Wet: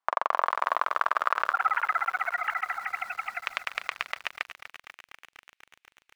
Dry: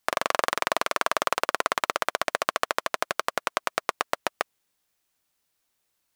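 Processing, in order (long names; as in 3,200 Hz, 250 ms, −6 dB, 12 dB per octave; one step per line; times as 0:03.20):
0:01.51–0:03.39: three sine waves on the formant tracks
band-pass filter sweep 1,000 Hz → 2,400 Hz, 0:00.26–0:03.35
feedback echo at a low word length 245 ms, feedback 80%, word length 8 bits, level −13 dB
level +3.5 dB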